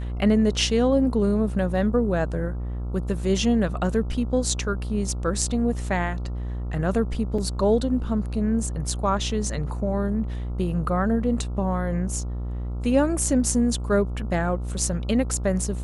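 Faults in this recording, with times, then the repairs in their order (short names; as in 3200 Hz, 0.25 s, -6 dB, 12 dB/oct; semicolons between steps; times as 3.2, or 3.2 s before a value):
buzz 60 Hz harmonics 23 -29 dBFS
7.38 gap 4.4 ms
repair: de-hum 60 Hz, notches 23; interpolate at 7.38, 4.4 ms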